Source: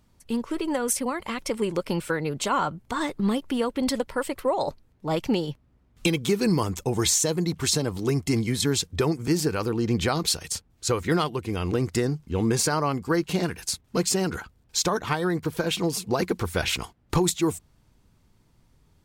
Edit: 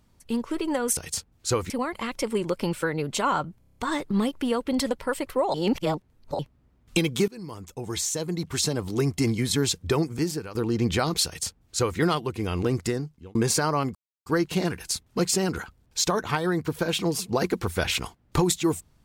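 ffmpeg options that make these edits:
ffmpeg -i in.wav -filter_complex "[0:a]asplit=15[link_01][link_02][link_03][link_04][link_05][link_06][link_07][link_08][link_09][link_10][link_11][link_12][link_13][link_14][link_15];[link_01]atrim=end=0.972[link_16];[link_02]atrim=start=10.348:end=11.082[link_17];[link_03]atrim=start=0.968:end=2.892[link_18];[link_04]atrim=start=2.858:end=2.892[link_19];[link_05]atrim=start=2.858:end=2.892[link_20];[link_06]atrim=start=2.858:end=2.892[link_21];[link_07]atrim=start=2.858:end=2.892[link_22];[link_08]atrim=start=2.858:end=2.892[link_23];[link_09]atrim=start=2.858:end=4.632[link_24];[link_10]atrim=start=4.628:end=5.482,asetpts=PTS-STARTPTS,areverse[link_25];[link_11]atrim=start=5.478:end=6.37,asetpts=PTS-STARTPTS,afade=type=out:start_time=0.888:duration=0.004:curve=hsin:silence=0.0749894[link_26];[link_12]atrim=start=6.37:end=9.64,asetpts=PTS-STARTPTS,afade=type=in:duration=1.71:silence=0.0749894,afade=type=out:start_time=2.77:duration=0.5:silence=0.177828[link_27];[link_13]atrim=start=9.64:end=12.44,asetpts=PTS-STARTPTS,afade=type=in:duration=0.004:curve=hsin:silence=0.177828,afade=type=out:start_time=2.21:duration=0.59[link_28];[link_14]atrim=start=12.44:end=13.04,asetpts=PTS-STARTPTS,afade=type=in:duration=0.004:curve=hsin,afade=type=out:start_time=0.596:duration=0.004:curve=hsin,apad=pad_dur=0.31[link_29];[link_15]atrim=start=13.04,asetpts=PTS-STARTPTS,afade=type=in:duration=0.004:curve=hsin[link_30];[link_16][link_17]acrossfade=duration=0.004:curve1=hsin:curve2=hsin[link_31];[link_31][link_18]acrossfade=duration=0.004:curve1=hsin:curve2=hsin[link_32];[link_32][link_19]acrossfade=duration=0.004:curve1=hsin:curve2=hsin[link_33];[link_33][link_20]acrossfade=duration=0.004:curve1=hsin:curve2=hsin[link_34];[link_34][link_21]acrossfade=duration=0.004:curve1=hsin:curve2=hsin[link_35];[link_35][link_22]acrossfade=duration=0.004:curve1=hsin:curve2=hsin[link_36];[link_36][link_23]acrossfade=duration=0.004:curve1=hsin:curve2=hsin[link_37];[link_37][link_24]acrossfade=duration=0.004:curve1=hsin:curve2=hsin[link_38];[link_38][link_25]acrossfade=duration=0.004:curve1=hsin:curve2=hsin[link_39];[link_26][link_27][link_28][link_29][link_30]concat=n=5:v=0:a=1[link_40];[link_39][link_40]acrossfade=duration=0.004:curve1=hsin:curve2=hsin" out.wav

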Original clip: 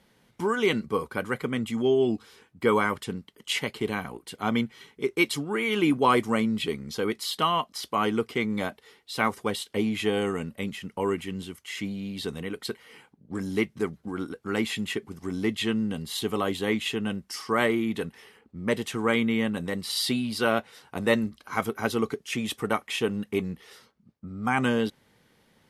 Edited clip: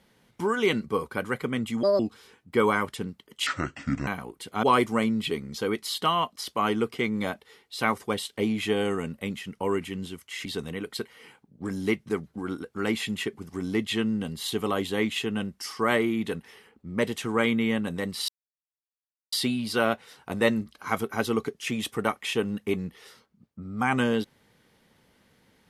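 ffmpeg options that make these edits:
ffmpeg -i in.wav -filter_complex "[0:a]asplit=8[link_01][link_02][link_03][link_04][link_05][link_06][link_07][link_08];[link_01]atrim=end=1.834[link_09];[link_02]atrim=start=1.83:end=2.08,asetpts=PTS-STARTPTS,asetrate=67032,aresample=44100,atrim=end_sample=7253,asetpts=PTS-STARTPTS[link_10];[link_03]atrim=start=2.076:end=3.554[link_11];[link_04]atrim=start=3.55:end=3.94,asetpts=PTS-STARTPTS,asetrate=28224,aresample=44100,atrim=end_sample=26873,asetpts=PTS-STARTPTS[link_12];[link_05]atrim=start=3.936:end=4.502[link_13];[link_06]atrim=start=5.998:end=11.822[link_14];[link_07]atrim=start=12.148:end=19.98,asetpts=PTS-STARTPTS,afade=type=out:start_time=7.828:duration=0.004:curve=hsin,apad=pad_dur=1.04[link_15];[link_08]atrim=start=19.98,asetpts=PTS-STARTPTS,afade=type=in:duration=0.004:curve=hsin[link_16];[link_09][link_10]acrossfade=duration=0.004:curve1=hsin:curve2=hsin[link_17];[link_17][link_11]acrossfade=duration=0.004:curve1=hsin:curve2=hsin[link_18];[link_18][link_12]acrossfade=duration=0.004:curve1=hsin:curve2=hsin[link_19];[link_19][link_13]acrossfade=duration=0.004:curve1=hsin:curve2=hsin[link_20];[link_20][link_14]acrossfade=duration=0.004:curve1=hsin:curve2=hsin[link_21];[link_15][link_16]concat=n=2:v=0:a=1[link_22];[link_21][link_22]acrossfade=duration=0.004:curve1=hsin:curve2=hsin" out.wav

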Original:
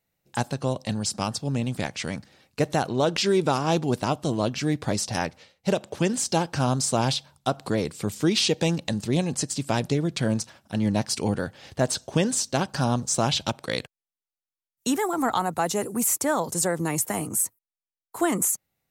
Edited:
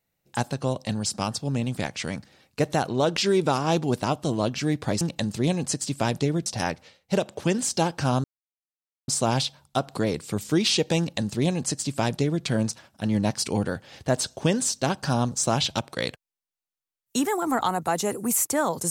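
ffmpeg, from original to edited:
ffmpeg -i in.wav -filter_complex "[0:a]asplit=4[link_01][link_02][link_03][link_04];[link_01]atrim=end=5.012[link_05];[link_02]atrim=start=8.698:end=10.152[link_06];[link_03]atrim=start=5.008:end=6.79,asetpts=PTS-STARTPTS,afade=type=out:start_time=1.778:duration=0.004:curve=hsin,apad=pad_dur=0.84[link_07];[link_04]atrim=start=6.79,asetpts=PTS-STARTPTS,afade=type=in:duration=0.004:curve=hsin[link_08];[link_05][link_06]acrossfade=duration=0.004:curve1=hsin:curve2=hsin[link_09];[link_07][link_08]concat=n=2:v=0:a=1[link_10];[link_09][link_10]acrossfade=duration=0.004:curve1=hsin:curve2=hsin" out.wav

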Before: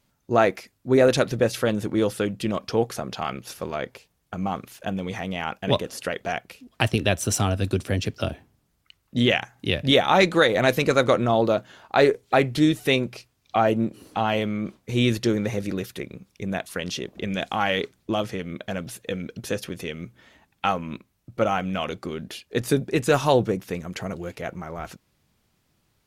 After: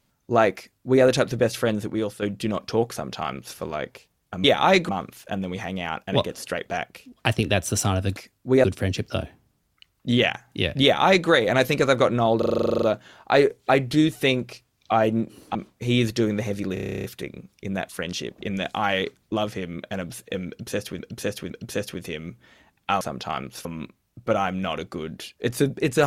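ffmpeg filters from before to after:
ffmpeg -i in.wav -filter_complex "[0:a]asplit=32[link_01][link_02][link_03][link_04][link_05][link_06][link_07][link_08][link_09][link_10][link_11][link_12][link_13][link_14][link_15][link_16][link_17][link_18][link_19][link_20][link_21][link_22][link_23][link_24][link_25][link_26][link_27][link_28][link_29][link_30][link_31][link_32];[link_01]atrim=end=2.22,asetpts=PTS-STARTPTS,afade=type=out:start_time=1.72:duration=0.5:silence=0.375837[link_33];[link_02]atrim=start=2.22:end=4.442,asetpts=PTS-STARTPTS,afade=type=in:duration=0.004:curve=hsin:silence=0.375837[link_34];[link_03]atrim=start=9.908:end=10.362[link_35];[link_04]atrim=start=4.438:end=7.722[link_36];[link_05]atrim=start=0.568:end=1.042[link_37];[link_06]atrim=start=7.718:end=11.502[link_38];[link_07]atrim=start=11.458:end=11.502[link_39];[link_08]atrim=start=11.458:end=11.502[link_40];[link_09]atrim=start=11.458:end=11.502[link_41];[link_10]atrim=start=11.458:end=11.502[link_42];[link_11]atrim=start=11.458:end=11.502[link_43];[link_12]atrim=start=11.458:end=11.502[link_44];[link_13]atrim=start=11.458:end=11.502[link_45];[link_14]atrim=start=11.458:end=11.502[link_46];[link_15]atrim=start=11.458:end=11.502[link_47];[link_16]atrim=start=11.458:end=11.502[link_48];[link_17]atrim=start=11.458:end=14.192[link_49];[link_18]atrim=start=14.618:end=15.842[link_50];[link_19]atrim=start=15.808:end=15.842[link_51];[link_20]atrim=start=15.808:end=15.842[link_52];[link_21]atrim=start=15.808:end=15.842[link_53];[link_22]atrim=start=15.808:end=15.842[link_54];[link_23]atrim=start=15.808:end=15.842[link_55];[link_24]atrim=start=15.808:end=15.842[link_56];[link_25]atrim=start=15.808:end=15.842[link_57];[link_26]atrim=start=15.808:end=15.842[link_58];[link_27]atrim=start=15.808:end=15.842[link_59];[link_28]atrim=start=15.808:end=19.762[link_60];[link_29]atrim=start=19.248:end=19.762[link_61];[link_30]atrim=start=19.248:end=20.762[link_62];[link_31]atrim=start=2.928:end=3.572[link_63];[link_32]atrim=start=20.758[link_64];[link_33][link_34]concat=n=2:v=0:a=1[link_65];[link_65][link_35]acrossfade=duration=0.004:curve1=hsin:curve2=hsin[link_66];[link_66][link_36]acrossfade=duration=0.004:curve1=hsin:curve2=hsin[link_67];[link_67][link_37]acrossfade=duration=0.004:curve1=hsin:curve2=hsin[link_68];[link_68][link_38]acrossfade=duration=0.004:curve1=hsin:curve2=hsin[link_69];[link_69][link_39]acrossfade=duration=0.004:curve1=hsin:curve2=hsin[link_70];[link_70][link_40]acrossfade=duration=0.004:curve1=hsin:curve2=hsin[link_71];[link_71][link_41]acrossfade=duration=0.004:curve1=hsin:curve2=hsin[link_72];[link_72][link_42]acrossfade=duration=0.004:curve1=hsin:curve2=hsin[link_73];[link_73][link_43]acrossfade=duration=0.004:curve1=hsin:curve2=hsin[link_74];[link_74][link_44]acrossfade=duration=0.004:curve1=hsin:curve2=hsin[link_75];[link_75][link_45]acrossfade=duration=0.004:curve1=hsin:curve2=hsin[link_76];[link_76][link_46]acrossfade=duration=0.004:curve1=hsin:curve2=hsin[link_77];[link_77][link_47]acrossfade=duration=0.004:curve1=hsin:curve2=hsin[link_78];[link_78][link_48]acrossfade=duration=0.004:curve1=hsin:curve2=hsin[link_79];[link_79][link_49]acrossfade=duration=0.004:curve1=hsin:curve2=hsin[link_80];[link_80][link_50]acrossfade=duration=0.004:curve1=hsin:curve2=hsin[link_81];[link_81][link_51]acrossfade=duration=0.004:curve1=hsin:curve2=hsin[link_82];[link_82][link_52]acrossfade=duration=0.004:curve1=hsin:curve2=hsin[link_83];[link_83][link_53]acrossfade=duration=0.004:curve1=hsin:curve2=hsin[link_84];[link_84][link_54]acrossfade=duration=0.004:curve1=hsin:curve2=hsin[link_85];[link_85][link_55]acrossfade=duration=0.004:curve1=hsin:curve2=hsin[link_86];[link_86][link_56]acrossfade=duration=0.004:curve1=hsin:curve2=hsin[link_87];[link_87][link_57]acrossfade=duration=0.004:curve1=hsin:curve2=hsin[link_88];[link_88][link_58]acrossfade=duration=0.004:curve1=hsin:curve2=hsin[link_89];[link_89][link_59]acrossfade=duration=0.004:curve1=hsin:curve2=hsin[link_90];[link_90][link_60]acrossfade=duration=0.004:curve1=hsin:curve2=hsin[link_91];[link_91][link_61]acrossfade=duration=0.004:curve1=hsin:curve2=hsin[link_92];[link_92][link_62]acrossfade=duration=0.004:curve1=hsin:curve2=hsin[link_93];[link_93][link_63]acrossfade=duration=0.004:curve1=hsin:curve2=hsin[link_94];[link_94][link_64]acrossfade=duration=0.004:curve1=hsin:curve2=hsin" out.wav

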